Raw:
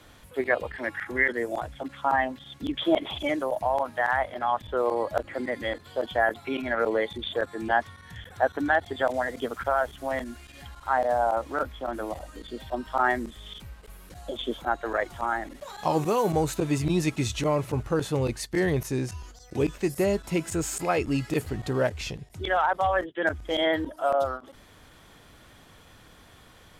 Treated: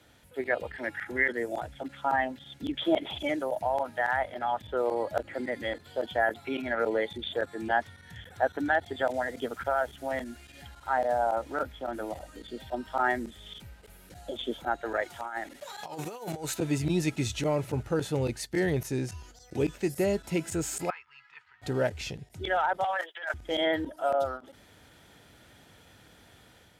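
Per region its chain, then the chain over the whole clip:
15.02–16.6 HPF 46 Hz + low shelf 440 Hz -10.5 dB + negative-ratio compressor -32 dBFS, ratio -0.5
20.9–21.62 elliptic high-pass 1000 Hz + tape spacing loss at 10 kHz 45 dB
22.84–23.34 HPF 720 Hz 24 dB/oct + transient shaper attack -11 dB, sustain +10 dB
whole clip: HPF 63 Hz; notch 1100 Hz, Q 5.6; AGC gain up to 4 dB; gain -6.5 dB

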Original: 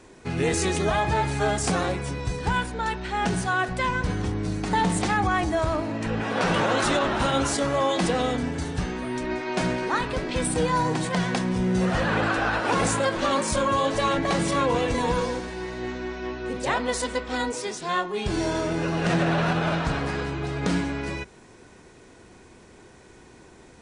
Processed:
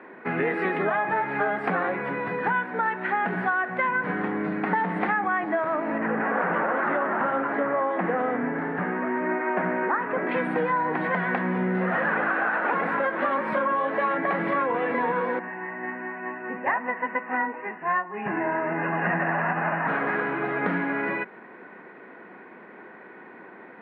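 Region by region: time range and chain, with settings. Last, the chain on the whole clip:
5.98–10.27 LPF 1900 Hz + Doppler distortion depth 0.17 ms
15.39–19.88 steep low-pass 2800 Hz 96 dB/oct + comb 1.1 ms, depth 45% + upward expander, over -32 dBFS
whole clip: elliptic band-pass 190–1900 Hz, stop band 50 dB; tilt shelf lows -5.5 dB, about 840 Hz; compressor, threshold -30 dBFS; gain +8 dB

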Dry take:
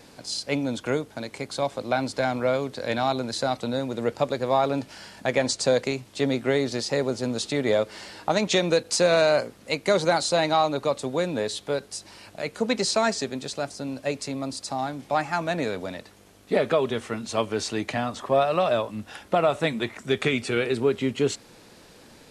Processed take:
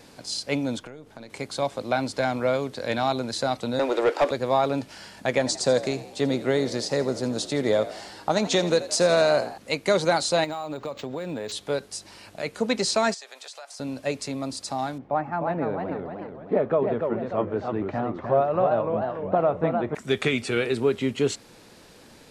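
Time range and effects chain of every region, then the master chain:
0.79–1.3 half-wave gain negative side -3 dB + high shelf 4500 Hz -6.5 dB + compressor 16:1, threshold -36 dBFS
3.79–4.31 steep high-pass 280 Hz 72 dB/oct + overdrive pedal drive 22 dB, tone 1700 Hz, clips at -11.5 dBFS
5.38–9.58 bell 2400 Hz -4.5 dB 0.66 oct + frequency-shifting echo 83 ms, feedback 54%, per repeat +57 Hz, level -15 dB
10.44–11.52 compressor 12:1, threshold -27 dBFS + decimation joined by straight lines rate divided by 4×
13.14–13.8 HPF 650 Hz 24 dB/oct + compressor 12:1, threshold -37 dBFS
14.98–19.95 LPF 1100 Hz + warbling echo 0.299 s, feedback 49%, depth 198 cents, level -5 dB
whole clip: dry

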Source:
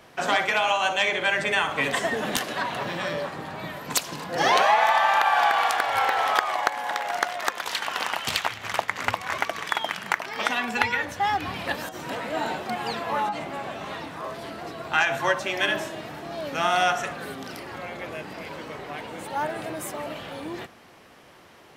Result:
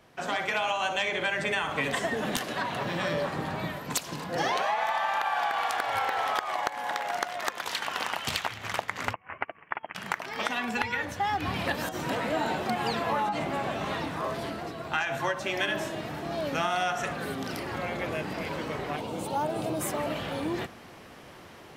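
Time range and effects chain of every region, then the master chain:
9.13–9.95 steep low-pass 2900 Hz 96 dB/oct + upward expander 2.5:1, over -37 dBFS
18.96–19.81 HPF 62 Hz + bell 1800 Hz -13.5 dB 0.71 oct
whole clip: AGC gain up to 10.5 dB; low shelf 270 Hz +5.5 dB; compressor, threshold -16 dBFS; gain -8.5 dB

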